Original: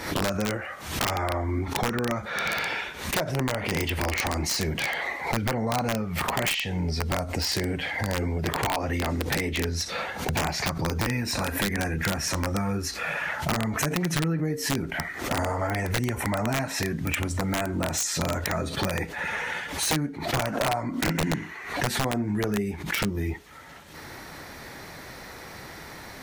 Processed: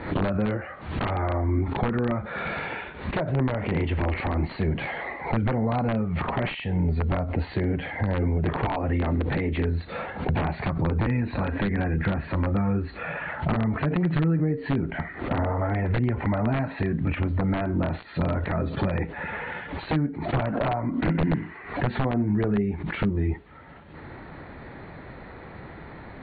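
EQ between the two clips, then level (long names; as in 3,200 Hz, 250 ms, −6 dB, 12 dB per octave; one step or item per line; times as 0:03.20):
linear-phase brick-wall low-pass 4,600 Hz
high-frequency loss of the air 460 metres
low-shelf EQ 470 Hz +5 dB
0.0 dB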